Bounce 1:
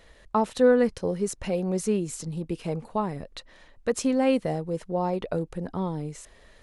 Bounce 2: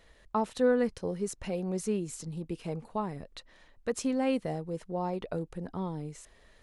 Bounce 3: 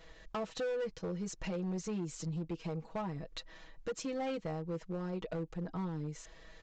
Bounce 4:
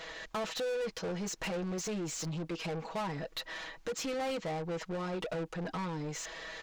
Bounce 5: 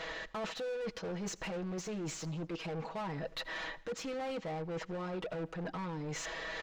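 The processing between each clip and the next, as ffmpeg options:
ffmpeg -i in.wav -af "equalizer=frequency=550:width_type=o:width=0.3:gain=-2,volume=-5.5dB" out.wav
ffmpeg -i in.wav -af "aecho=1:1:6.2:0.89,acompressor=threshold=-41dB:ratio=2,aresample=16000,volume=34dB,asoftclip=hard,volume=-34dB,aresample=44100,volume=1.5dB" out.wav
ffmpeg -i in.wav -filter_complex "[0:a]asplit=2[link_01][link_02];[link_02]highpass=frequency=720:poles=1,volume=23dB,asoftclip=type=tanh:threshold=-30dB[link_03];[link_01][link_03]amix=inputs=2:normalize=0,lowpass=frequency=6900:poles=1,volume=-6dB" out.wav
ffmpeg -i in.wav -af "lowpass=frequency=3300:poles=1,areverse,acompressor=threshold=-44dB:ratio=6,areverse,aecho=1:1:82|164|246:0.075|0.0367|0.018,volume=6.5dB" out.wav

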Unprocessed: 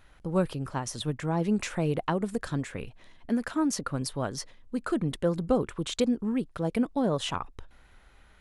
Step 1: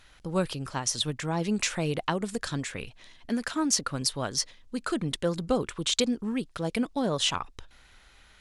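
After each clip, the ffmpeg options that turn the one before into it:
ffmpeg -i in.wav -af "equalizer=frequency=5200:width=0.41:gain=12,volume=-2dB" out.wav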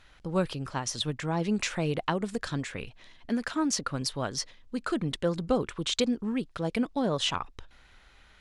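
ffmpeg -i in.wav -af "lowpass=frequency=3900:poles=1" out.wav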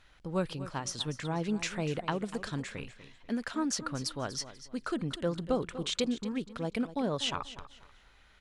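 ffmpeg -i in.wav -af "aecho=1:1:244|488|732:0.2|0.0539|0.0145,volume=-4dB" out.wav

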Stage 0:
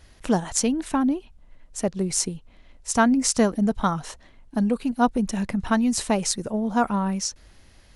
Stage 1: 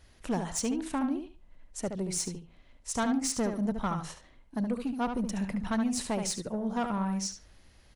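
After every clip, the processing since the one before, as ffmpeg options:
ffmpeg -i in.wav -filter_complex "[0:a]asoftclip=type=tanh:threshold=-17.5dB,asplit=2[link_01][link_02];[link_02]adelay=72,lowpass=frequency=4200:poles=1,volume=-6.5dB,asplit=2[link_03][link_04];[link_04]adelay=72,lowpass=frequency=4200:poles=1,volume=0.2,asplit=2[link_05][link_06];[link_06]adelay=72,lowpass=frequency=4200:poles=1,volume=0.2[link_07];[link_01][link_03][link_05][link_07]amix=inputs=4:normalize=0,volume=-6.5dB" out.wav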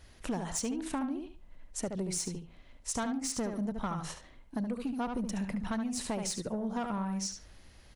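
ffmpeg -i in.wav -af "acompressor=threshold=-34dB:ratio=6,volume=2.5dB" out.wav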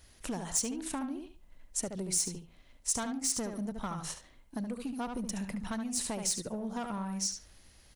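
ffmpeg -i in.wav -filter_complex "[0:a]highshelf=frequency=5200:gain=11.5,asplit=2[link_01][link_02];[link_02]aeval=exprs='sgn(val(0))*max(abs(val(0))-0.00422,0)':channel_layout=same,volume=-11dB[link_03];[link_01][link_03]amix=inputs=2:normalize=0,volume=-4.5dB" out.wav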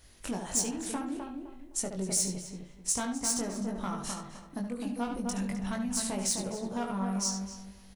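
ffmpeg -i in.wav -filter_complex "[0:a]asplit=2[link_01][link_02];[link_02]adelay=21,volume=-4dB[link_03];[link_01][link_03]amix=inputs=2:normalize=0,asplit=2[link_04][link_05];[link_05]adelay=257,lowpass=frequency=1500:poles=1,volume=-4dB,asplit=2[link_06][link_07];[link_07]adelay=257,lowpass=frequency=1500:poles=1,volume=0.3,asplit=2[link_08][link_09];[link_09]adelay=257,lowpass=frequency=1500:poles=1,volume=0.3,asplit=2[link_10][link_11];[link_11]adelay=257,lowpass=frequency=1500:poles=1,volume=0.3[link_12];[link_06][link_08][link_10][link_12]amix=inputs=4:normalize=0[link_13];[link_04][link_13]amix=inputs=2:normalize=0" out.wav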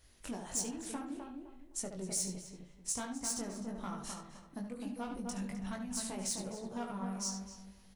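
ffmpeg -i in.wav -af "flanger=delay=1.5:depth=7.8:regen=-66:speed=1.2:shape=triangular,volume=-2.5dB" out.wav

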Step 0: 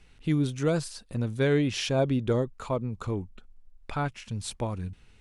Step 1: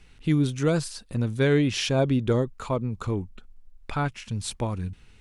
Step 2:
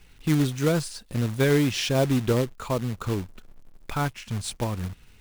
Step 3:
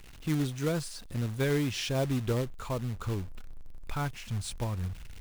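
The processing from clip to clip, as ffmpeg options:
ffmpeg -i in.wav -af "equalizer=frequency=620:width=1.5:gain=-2.5,volume=3.5dB" out.wav
ffmpeg -i in.wav -af "acrusher=bits=3:mode=log:mix=0:aa=0.000001" out.wav
ffmpeg -i in.wav -af "aeval=exprs='val(0)+0.5*0.0119*sgn(val(0))':channel_layout=same,asubboost=boost=2:cutoff=140,volume=-7.5dB" out.wav

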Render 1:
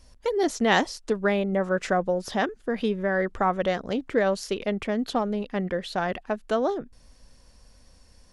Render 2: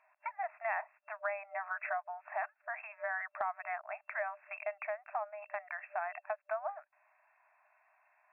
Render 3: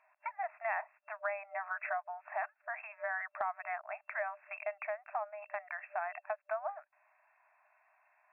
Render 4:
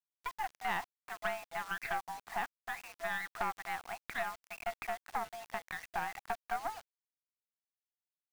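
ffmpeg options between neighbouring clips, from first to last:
ffmpeg -i in.wav -af "afftfilt=real='re*between(b*sr/4096,600,2700)':imag='im*between(b*sr/4096,600,2700)':win_size=4096:overlap=0.75,acompressor=threshold=-35dB:ratio=3,volume=-1dB" out.wav
ffmpeg -i in.wav -af anull out.wav
ffmpeg -i in.wav -af "highpass=frequency=170:width_type=q:width=0.5412,highpass=frequency=170:width_type=q:width=1.307,lowpass=frequency=2500:width_type=q:width=0.5176,lowpass=frequency=2500:width_type=q:width=0.7071,lowpass=frequency=2500:width_type=q:width=1.932,afreqshift=71,aeval=exprs='(tanh(25.1*val(0)+0.8)-tanh(0.8))/25.1':channel_layout=same,acrusher=bits=8:mix=0:aa=0.000001,volume=4.5dB" out.wav

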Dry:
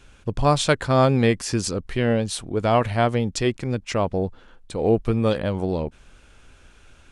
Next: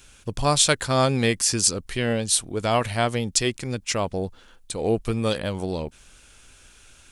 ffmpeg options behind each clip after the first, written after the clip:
ffmpeg -i in.wav -af "crystalizer=i=4.5:c=0,volume=-4dB" out.wav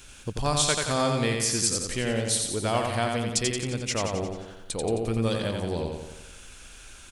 ffmpeg -i in.wav -filter_complex "[0:a]acompressor=threshold=-40dB:ratio=1.5,asplit=2[link_01][link_02];[link_02]aecho=0:1:88|176|264|352|440|528|616|704:0.631|0.353|0.198|0.111|0.0621|0.0347|0.0195|0.0109[link_03];[link_01][link_03]amix=inputs=2:normalize=0,volume=2.5dB" out.wav

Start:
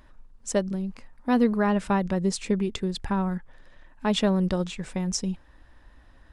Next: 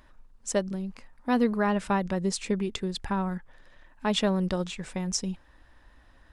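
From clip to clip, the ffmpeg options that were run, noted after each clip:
ffmpeg -i in.wav -af "lowshelf=frequency=480:gain=-4" out.wav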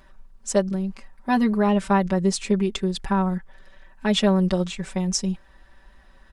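ffmpeg -i in.wav -af "aecho=1:1:5.2:0.92,volume=1.5dB" out.wav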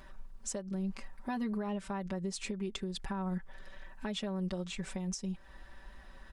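ffmpeg -i in.wav -af "acompressor=threshold=-27dB:ratio=8,alimiter=level_in=3.5dB:limit=-24dB:level=0:latency=1:release=404,volume=-3.5dB" out.wav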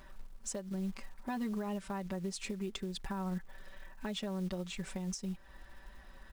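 ffmpeg -i in.wav -af "acrusher=bits=6:mode=log:mix=0:aa=0.000001,volume=-1.5dB" out.wav

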